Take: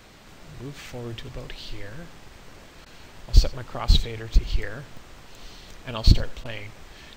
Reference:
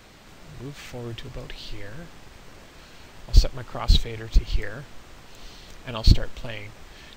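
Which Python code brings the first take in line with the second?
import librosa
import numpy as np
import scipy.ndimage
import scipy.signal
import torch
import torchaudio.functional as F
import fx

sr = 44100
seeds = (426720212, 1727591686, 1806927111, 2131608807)

y = fx.fix_interpolate(x, sr, at_s=(2.75, 4.97), length_ms=2.6)
y = fx.fix_interpolate(y, sr, at_s=(2.85, 6.44), length_ms=10.0)
y = fx.fix_echo_inverse(y, sr, delay_ms=88, level_db=-18.0)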